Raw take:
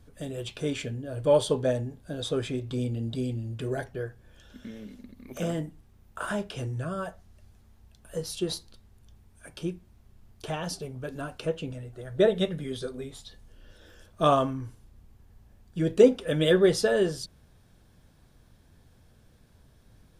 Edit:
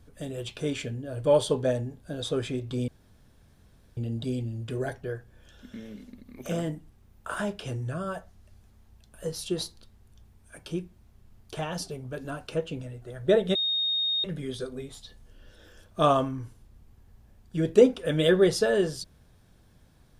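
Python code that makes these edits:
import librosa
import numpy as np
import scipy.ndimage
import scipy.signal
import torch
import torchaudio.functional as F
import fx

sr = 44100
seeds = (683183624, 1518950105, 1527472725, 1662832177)

y = fx.edit(x, sr, fx.insert_room_tone(at_s=2.88, length_s=1.09),
    fx.insert_tone(at_s=12.46, length_s=0.69, hz=3710.0, db=-24.0), tone=tone)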